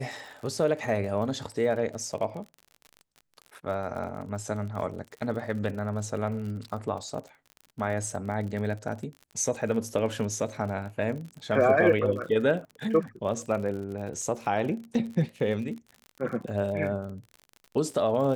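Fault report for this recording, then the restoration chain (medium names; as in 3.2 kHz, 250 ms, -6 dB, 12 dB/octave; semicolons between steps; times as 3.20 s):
crackle 49 per s -36 dBFS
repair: de-click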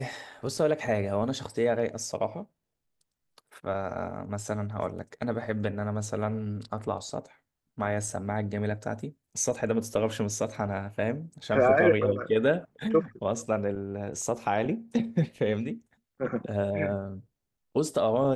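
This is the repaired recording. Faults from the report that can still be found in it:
nothing left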